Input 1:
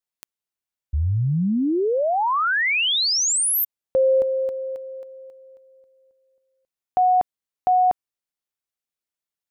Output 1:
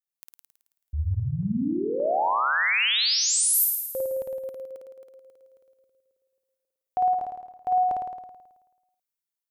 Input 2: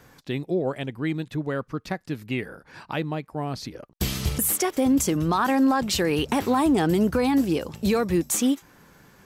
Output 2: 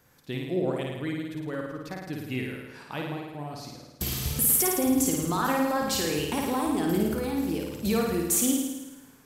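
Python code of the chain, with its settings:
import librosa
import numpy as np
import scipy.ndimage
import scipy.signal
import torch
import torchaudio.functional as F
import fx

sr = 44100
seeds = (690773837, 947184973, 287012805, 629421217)

y = fx.high_shelf(x, sr, hz=8200.0, db=10.5)
y = fx.tremolo_random(y, sr, seeds[0], hz=3.5, depth_pct=55)
y = fx.room_flutter(y, sr, wall_m=9.3, rt60_s=1.1)
y = y * librosa.db_to_amplitude(-5.5)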